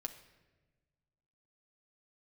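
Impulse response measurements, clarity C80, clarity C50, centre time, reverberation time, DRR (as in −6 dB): 13.5 dB, 11.5 dB, 11 ms, 1.2 s, 5.0 dB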